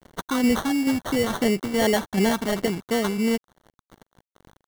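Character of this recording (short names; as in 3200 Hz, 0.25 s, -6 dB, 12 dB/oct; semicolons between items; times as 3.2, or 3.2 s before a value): tremolo saw down 2.3 Hz, depth 40%; a quantiser's noise floor 8-bit, dither none; phasing stages 8, 2.8 Hz, lowest notch 470–1600 Hz; aliases and images of a low sample rate 2500 Hz, jitter 0%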